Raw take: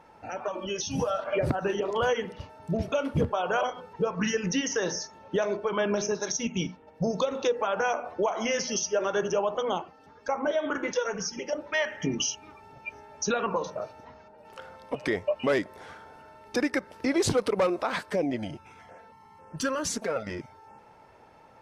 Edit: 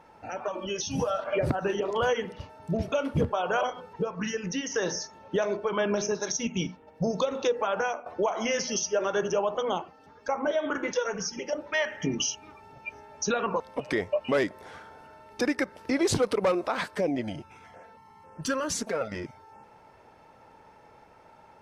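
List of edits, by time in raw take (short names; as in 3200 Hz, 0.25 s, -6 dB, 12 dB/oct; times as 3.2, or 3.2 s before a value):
4.03–4.74 gain -4 dB
7.78–8.06 fade out, to -11.5 dB
13.6–14.75 cut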